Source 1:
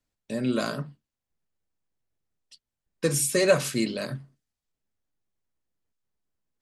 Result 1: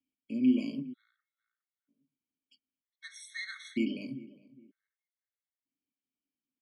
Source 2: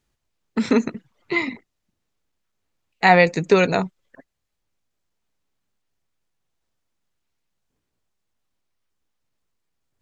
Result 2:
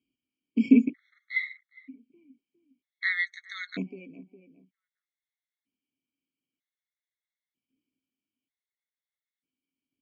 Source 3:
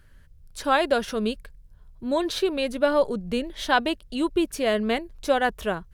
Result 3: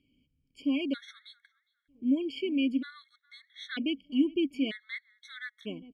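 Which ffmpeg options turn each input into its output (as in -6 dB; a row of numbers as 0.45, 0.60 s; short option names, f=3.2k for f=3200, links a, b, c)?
-filter_complex "[0:a]asplit=3[a][b][c];[a]bandpass=f=270:t=q:w=8,volume=0dB[d];[b]bandpass=f=2.29k:t=q:w=8,volume=-6dB[e];[c]bandpass=f=3.01k:t=q:w=8,volume=-9dB[f];[d][e][f]amix=inputs=3:normalize=0,asplit=2[g][h];[h]adelay=409,lowpass=f=1.3k:p=1,volume=-19dB,asplit=2[i][j];[j]adelay=409,lowpass=f=1.3k:p=1,volume=0.31,asplit=2[k][l];[l]adelay=409,lowpass=f=1.3k:p=1,volume=0.31[m];[g][i][k][m]amix=inputs=4:normalize=0,afftfilt=real='re*gt(sin(2*PI*0.53*pts/sr)*(1-2*mod(floor(b*sr/1024/1100),2)),0)':imag='im*gt(sin(2*PI*0.53*pts/sr)*(1-2*mod(floor(b*sr/1024/1100),2)),0)':win_size=1024:overlap=0.75,volume=6.5dB"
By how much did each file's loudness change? -7.0, -8.5, -7.0 LU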